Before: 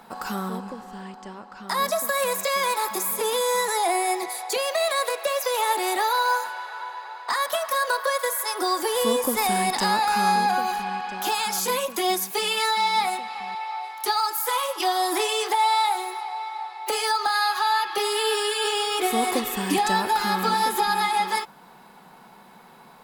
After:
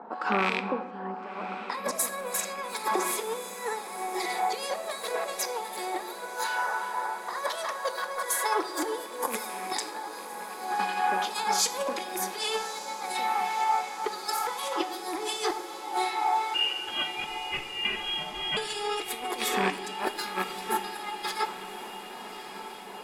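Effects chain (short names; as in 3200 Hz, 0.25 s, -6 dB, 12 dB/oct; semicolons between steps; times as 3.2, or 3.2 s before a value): rattling part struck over -34 dBFS, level -15 dBFS; HPF 250 Hz 24 dB/oct; low-pass opened by the level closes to 880 Hz, open at -19.5 dBFS; dynamic EQ 2800 Hz, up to -8 dB, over -45 dBFS, Q 4.5; negative-ratio compressor -30 dBFS, ratio -0.5; harmonic tremolo 2.7 Hz, depth 70%, crossover 2000 Hz; 16.54–18.57 inverted band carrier 3700 Hz; diffused feedback echo 1.144 s, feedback 72%, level -12.5 dB; shoebox room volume 480 m³, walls mixed, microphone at 0.43 m; gain +2.5 dB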